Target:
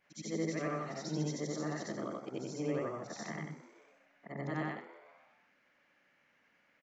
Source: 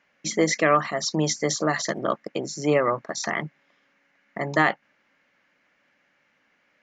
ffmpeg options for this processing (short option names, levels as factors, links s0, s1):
-filter_complex "[0:a]afftfilt=real='re':imag='-im':win_size=8192:overlap=0.75,highshelf=f=7000:g=9,asplit=2[s0][s1];[s1]acompressor=threshold=0.0141:ratio=12,volume=0.944[s2];[s0][s2]amix=inputs=2:normalize=0,aemphasis=mode=reproduction:type=cd,acrossover=split=350[s3][s4];[s4]acompressor=threshold=0.00251:ratio=1.5[s5];[s3][s5]amix=inputs=2:normalize=0,asplit=2[s6][s7];[s7]asplit=6[s8][s9][s10][s11][s12][s13];[s8]adelay=125,afreqshift=94,volume=0.178[s14];[s9]adelay=250,afreqshift=188,volume=0.105[s15];[s10]adelay=375,afreqshift=282,volume=0.0617[s16];[s11]adelay=500,afreqshift=376,volume=0.0367[s17];[s12]adelay=625,afreqshift=470,volume=0.0216[s18];[s13]adelay=750,afreqshift=564,volume=0.0127[s19];[s14][s15][s16][s17][s18][s19]amix=inputs=6:normalize=0[s20];[s6][s20]amix=inputs=2:normalize=0,volume=0.501"